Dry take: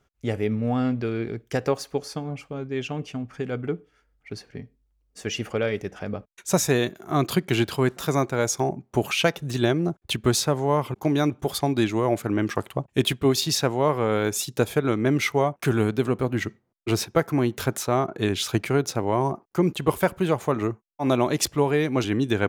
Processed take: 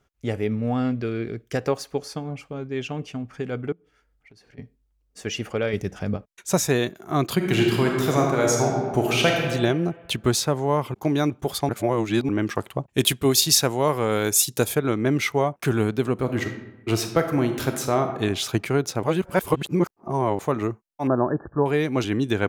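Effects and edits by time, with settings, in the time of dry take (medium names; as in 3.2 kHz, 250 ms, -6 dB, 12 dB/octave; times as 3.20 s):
0.91–1.57 s: peaking EQ 870 Hz -9.5 dB 0.25 oct
3.72–4.58 s: compression 8:1, threshold -49 dBFS
5.73–6.17 s: tone controls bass +8 dB, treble +6 dB
7.35–9.39 s: reverb throw, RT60 1.6 s, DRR -0.5 dB
11.69–12.29 s: reverse
12.98–14.75 s: peaking EQ 12 kHz +12 dB 1.9 oct
16.13–18.07 s: reverb throw, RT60 0.97 s, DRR 6 dB
19.03–20.39 s: reverse
21.07–21.66 s: brick-wall FIR low-pass 1.8 kHz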